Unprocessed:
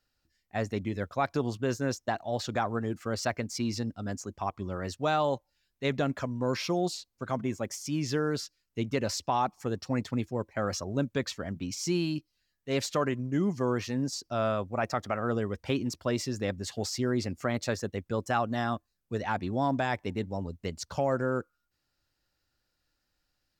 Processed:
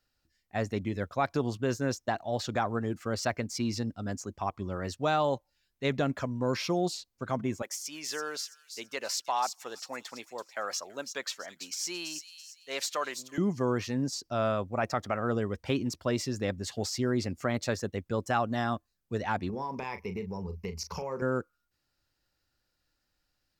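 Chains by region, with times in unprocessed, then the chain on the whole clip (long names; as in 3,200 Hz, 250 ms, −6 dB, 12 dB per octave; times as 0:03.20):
0:07.62–0:13.38: high-pass filter 700 Hz + high-shelf EQ 8,100 Hz +5.5 dB + delay with a high-pass on its return 332 ms, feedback 36%, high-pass 4,400 Hz, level −5.5 dB
0:19.49–0:21.22: EQ curve with evenly spaced ripples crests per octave 0.82, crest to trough 15 dB + downward compressor 4 to 1, threshold −33 dBFS + double-tracking delay 38 ms −10 dB
whole clip: no processing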